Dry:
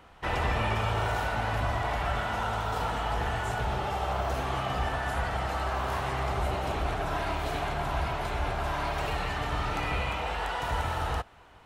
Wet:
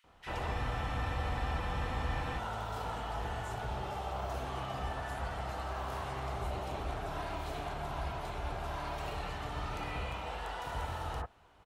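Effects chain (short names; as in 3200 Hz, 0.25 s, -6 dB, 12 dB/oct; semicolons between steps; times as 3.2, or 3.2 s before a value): bands offset in time highs, lows 40 ms, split 1900 Hz; spectral freeze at 0.56, 1.81 s; gain -7.5 dB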